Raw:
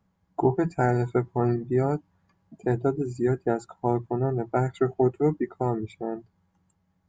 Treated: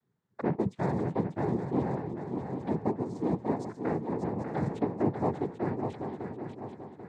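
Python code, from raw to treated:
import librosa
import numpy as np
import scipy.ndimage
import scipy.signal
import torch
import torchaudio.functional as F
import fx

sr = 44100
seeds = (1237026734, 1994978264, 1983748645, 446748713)

y = fx.env_flanger(x, sr, rest_ms=5.6, full_db=-23.5)
y = fx.noise_vocoder(y, sr, seeds[0], bands=6)
y = fx.echo_swing(y, sr, ms=789, ratio=3, feedback_pct=41, wet_db=-6.5)
y = F.gain(torch.from_numpy(y), -5.5).numpy()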